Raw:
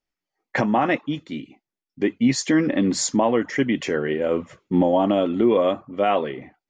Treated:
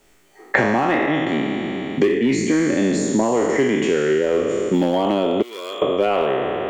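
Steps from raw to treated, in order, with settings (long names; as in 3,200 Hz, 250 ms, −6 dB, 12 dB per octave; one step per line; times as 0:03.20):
peak hold with a decay on every bin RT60 1.49 s
thirty-one-band graphic EQ 400 Hz +9 dB, 5,000 Hz −8 dB, 8,000 Hz +8 dB
in parallel at −3 dB: hard clipping −10 dBFS, distortion −15 dB
0:05.42–0:05.82: on the sum: first difference
multiband upward and downward compressor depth 100%
level −7.5 dB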